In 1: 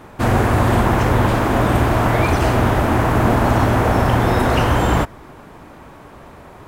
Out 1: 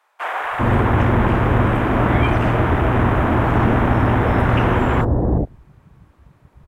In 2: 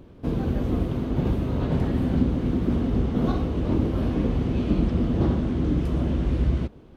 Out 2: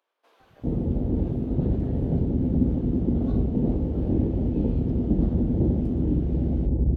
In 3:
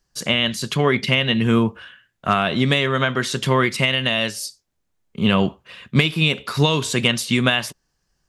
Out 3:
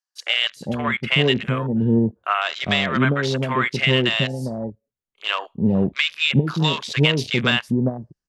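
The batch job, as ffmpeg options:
ffmpeg -i in.wav -filter_complex "[0:a]acrossover=split=680[link_01][link_02];[link_01]adelay=400[link_03];[link_03][link_02]amix=inputs=2:normalize=0,afwtdn=0.0398" out.wav

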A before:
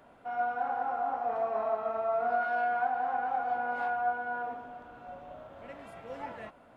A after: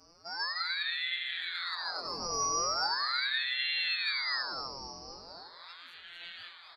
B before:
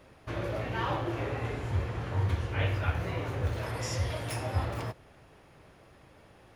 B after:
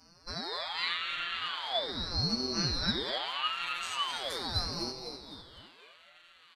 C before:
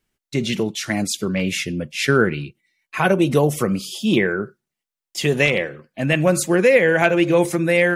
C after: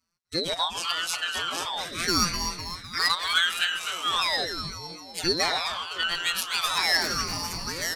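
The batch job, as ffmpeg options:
ffmpeg -i in.wav -filter_complex "[0:a]afftfilt=real='real(if(lt(b,920),b+92*(1-2*mod(floor(b/92),2)),b),0)':imag='imag(if(lt(b,920),b+92*(1-2*mod(floor(b/92),2)),b),0)':win_size=2048:overlap=0.75,lowpass=frequency=12000:width=0.5412,lowpass=frequency=12000:width=1.3066,equalizer=frequency=3400:width_type=o:width=0.38:gain=8.5,asoftclip=type=tanh:threshold=-11.5dB,afftfilt=real='hypot(re,im)*cos(PI*b)':imag='0':win_size=1024:overlap=0.75,asuperstop=centerf=1000:order=20:qfactor=2.7,asplit=7[link_01][link_02][link_03][link_04][link_05][link_06][link_07];[link_02]adelay=253,afreqshift=-130,volume=-7dB[link_08];[link_03]adelay=506,afreqshift=-260,volume=-12.5dB[link_09];[link_04]adelay=759,afreqshift=-390,volume=-18dB[link_10];[link_05]adelay=1012,afreqshift=-520,volume=-23.5dB[link_11];[link_06]adelay=1265,afreqshift=-650,volume=-29.1dB[link_12];[link_07]adelay=1518,afreqshift=-780,volume=-34.6dB[link_13];[link_01][link_08][link_09][link_10][link_11][link_12][link_13]amix=inputs=7:normalize=0,aeval=exprs='val(0)*sin(2*PI*1500*n/s+1500*0.55/0.4*sin(2*PI*0.4*n/s))':channel_layout=same" out.wav

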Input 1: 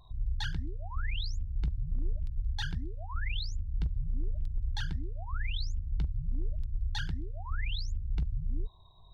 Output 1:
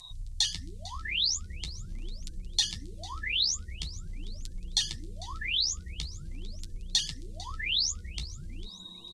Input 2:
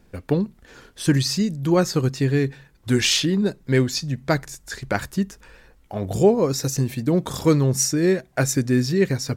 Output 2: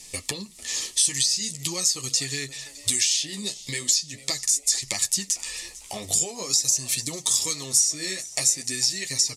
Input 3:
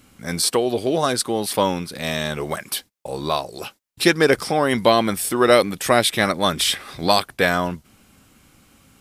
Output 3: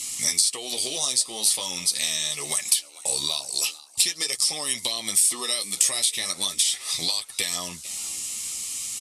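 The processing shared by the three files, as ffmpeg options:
ffmpeg -i in.wav -filter_complex "[0:a]asuperstop=centerf=1500:order=20:qfactor=4.1,acrossover=split=830|3300[link_01][link_02][link_03];[link_01]acompressor=threshold=-20dB:ratio=4[link_04];[link_02]acompressor=threshold=-30dB:ratio=4[link_05];[link_03]acompressor=threshold=-30dB:ratio=4[link_06];[link_04][link_05][link_06]amix=inputs=3:normalize=0,crystalizer=i=10:c=0,lowpass=frequency=8500:width=0.5412,lowpass=frequency=8500:width=1.3066,acompressor=threshold=-30dB:ratio=8,asplit=4[link_07][link_08][link_09][link_10];[link_08]adelay=449,afreqshift=150,volume=-19dB[link_11];[link_09]adelay=898,afreqshift=300,volume=-27.2dB[link_12];[link_10]adelay=1347,afreqshift=450,volume=-35.4dB[link_13];[link_07][link_11][link_12][link_13]amix=inputs=4:normalize=0,crystalizer=i=5.5:c=0,flanger=delay=6.4:depth=9.1:regen=-28:speed=0.43:shape=triangular" out.wav

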